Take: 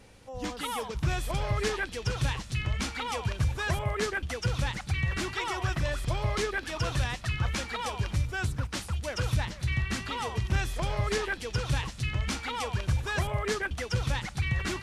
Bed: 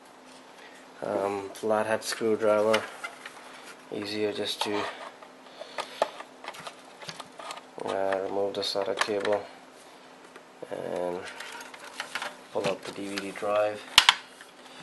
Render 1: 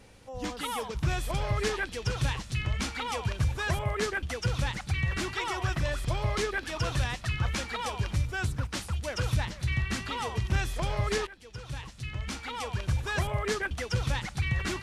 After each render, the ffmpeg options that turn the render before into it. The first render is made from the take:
-filter_complex "[0:a]asplit=2[s0][s1];[s0]atrim=end=11.27,asetpts=PTS-STARTPTS,afade=t=out:st=11.266:d=0.004:c=hsin:silence=0.11885[s2];[s1]atrim=start=11.27,asetpts=PTS-STARTPTS,afade=t=in:d=1.88:silence=0.11885[s3];[s2][s3]concat=n=2:v=0:a=1"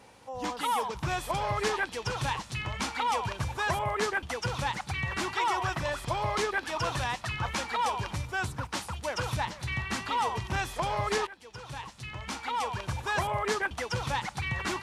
-af "highpass=f=180:p=1,equalizer=f=920:w=2:g=9"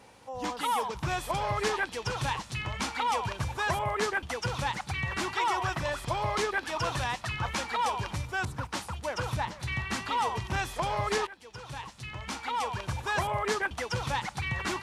-filter_complex "[0:a]asettb=1/sr,asplit=3[s0][s1][s2];[s0]atrim=end=8.454[s3];[s1]atrim=start=8.45:end=9.6,asetpts=PTS-STARTPTS,afade=t=in:d=0.004:c=qsin,afade=t=out:st=1.146:d=0.004:c=qsin,adynamicequalizer=threshold=0.00398:dfrequency=1900:dqfactor=0.7:tfrequency=1900:tqfactor=0.7:attack=5:release=100:ratio=0.375:range=2:mode=cutabove:tftype=highshelf[s4];[s2]atrim=start=9.596[s5];[s3][s4]acrossfade=d=0.004:c1=hsin:c2=qsin[s6];[s6][s5]acrossfade=d=0.004:c1=qsin:c2=hsin"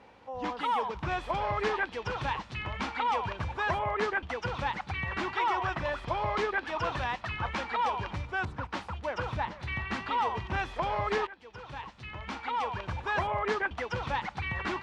-af "lowpass=3000,equalizer=f=130:t=o:w=0.4:g=-7.5"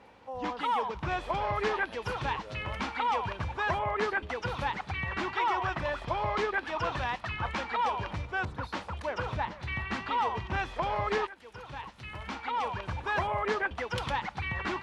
-filter_complex "[1:a]volume=0.0668[s0];[0:a][s0]amix=inputs=2:normalize=0"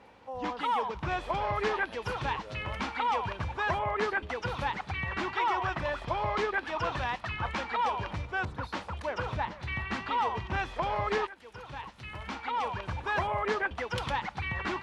-af anull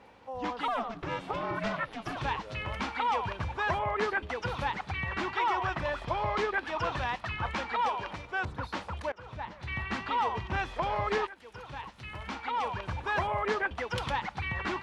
-filter_complex "[0:a]asettb=1/sr,asplit=3[s0][s1][s2];[s0]atrim=end=0.684[s3];[s1]atrim=start=0.68:end=2.17,asetpts=PTS-STARTPTS,afade=t=in:d=0.004:c=qsin,afade=t=out:st=1.486:d=0.004:c=qsin,aeval=exprs='val(0)*sin(2*PI*230*n/s)':c=same[s4];[s2]atrim=start=2.166[s5];[s3][s4]acrossfade=d=0.004:c1=hsin:c2=qsin[s6];[s6][s5]acrossfade=d=0.004:c1=qsin:c2=hsin,asettb=1/sr,asplit=3[s7][s8][s9];[s7]atrim=end=7.884[s10];[s8]atrim=start=7.88:end=8.45,asetpts=PTS-STARTPTS,afade=t=in:d=0.004:c=qsin,afade=t=out:st=0.566:d=0.004:c=qsin,equalizer=f=82:t=o:w=2:g=-12[s11];[s9]atrim=start=8.446[s12];[s10][s11]acrossfade=d=0.004:c1=hsin:c2=qsin[s13];[s13][s12]acrossfade=d=0.004:c1=qsin:c2=hsin,asplit=2[s14][s15];[s14]atrim=end=9.12,asetpts=PTS-STARTPTS,afade=t=out:st=9.116:d=0.004:c=hsin:silence=0.0749894[s16];[s15]atrim=start=9.12,asetpts=PTS-STARTPTS,afade=t=in:d=0.7:silence=0.0749894[s17];[s16][s17]concat=n=2:v=0:a=1"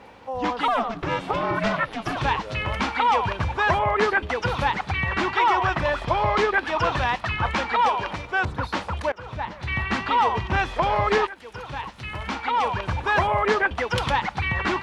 -af "volume=2.82"

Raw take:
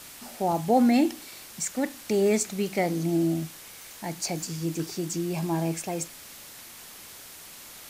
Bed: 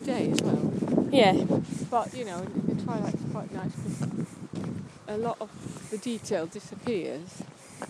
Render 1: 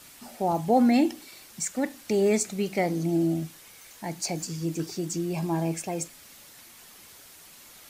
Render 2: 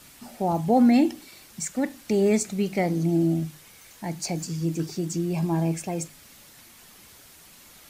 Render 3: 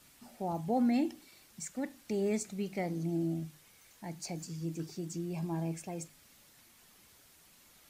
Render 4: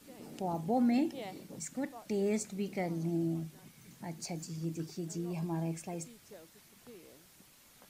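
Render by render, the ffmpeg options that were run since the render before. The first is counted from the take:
-af "afftdn=nr=6:nf=-46"
-af "bass=f=250:g=6,treble=f=4000:g=-1,bandreject=f=50:t=h:w=6,bandreject=f=100:t=h:w=6,bandreject=f=150:t=h:w=6"
-af "volume=0.282"
-filter_complex "[1:a]volume=0.0631[s0];[0:a][s0]amix=inputs=2:normalize=0"

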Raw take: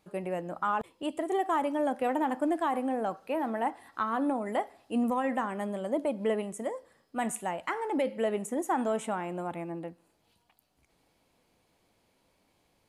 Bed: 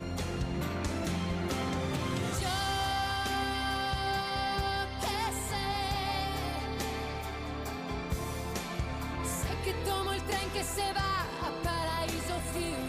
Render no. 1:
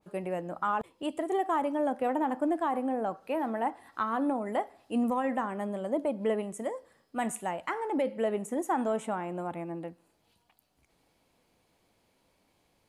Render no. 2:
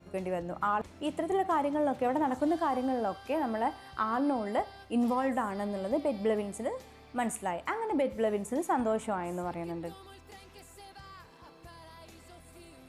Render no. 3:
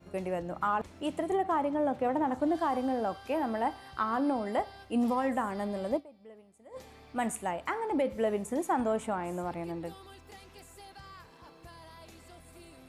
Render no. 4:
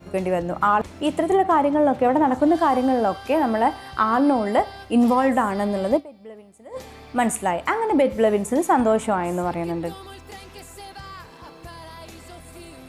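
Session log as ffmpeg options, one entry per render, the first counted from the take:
-af "adynamicequalizer=threshold=0.00708:dfrequency=1700:dqfactor=0.7:tfrequency=1700:tqfactor=0.7:attack=5:release=100:ratio=0.375:range=3:mode=cutabove:tftype=highshelf"
-filter_complex "[1:a]volume=0.119[s0];[0:a][s0]amix=inputs=2:normalize=0"
-filter_complex "[0:a]asettb=1/sr,asplit=3[s0][s1][s2];[s0]atrim=end=1.354[s3];[s1]atrim=start=1.35:end=2.55,asetpts=PTS-STARTPTS,afade=t=in:d=0.004:c=qsin,afade=t=out:st=1.196:d=0.004:c=qsin,highshelf=f=3300:g=-7.5[s4];[s2]atrim=start=2.546[s5];[s3][s4]acrossfade=d=0.004:c1=hsin:c2=qsin[s6];[s6][s5]acrossfade=d=0.004:c1=qsin:c2=hsin,asplit=3[s7][s8][s9];[s7]atrim=end=6.26,asetpts=PTS-STARTPTS,afade=t=out:st=5.96:d=0.3:c=exp:silence=0.0707946[s10];[s8]atrim=start=6.26:end=6.47,asetpts=PTS-STARTPTS,volume=0.0708[s11];[s9]atrim=start=6.47,asetpts=PTS-STARTPTS,afade=t=in:d=0.3:c=exp:silence=0.0707946[s12];[s10][s11][s12]concat=n=3:v=0:a=1"
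-af "volume=3.55"

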